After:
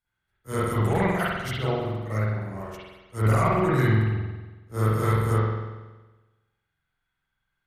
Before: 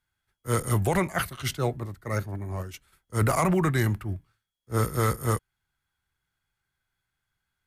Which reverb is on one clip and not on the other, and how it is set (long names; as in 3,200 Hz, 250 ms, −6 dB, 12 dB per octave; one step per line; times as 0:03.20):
spring reverb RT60 1.2 s, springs 46 ms, chirp 25 ms, DRR −9.5 dB
level −8 dB